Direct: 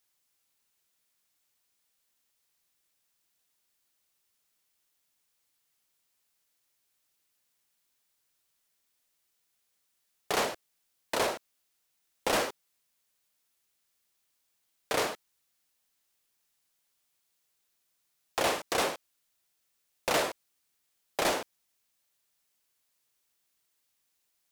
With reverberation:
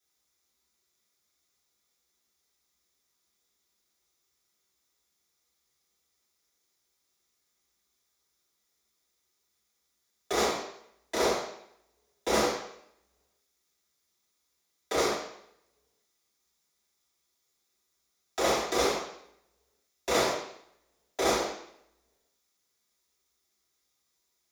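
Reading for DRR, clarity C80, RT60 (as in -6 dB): -10.0 dB, 6.5 dB, 0.70 s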